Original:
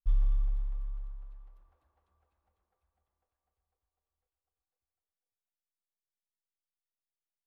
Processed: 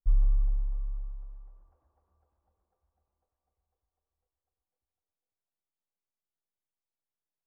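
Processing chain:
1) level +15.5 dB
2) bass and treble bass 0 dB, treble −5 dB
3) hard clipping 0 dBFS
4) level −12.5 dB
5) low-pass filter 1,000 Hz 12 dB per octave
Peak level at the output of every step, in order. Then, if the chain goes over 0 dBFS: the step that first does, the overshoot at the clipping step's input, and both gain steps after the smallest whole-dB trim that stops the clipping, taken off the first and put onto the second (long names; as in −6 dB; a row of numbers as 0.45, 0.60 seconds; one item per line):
−3.5, −3.5, −3.5, −16.0, −16.0 dBFS
no step passes full scale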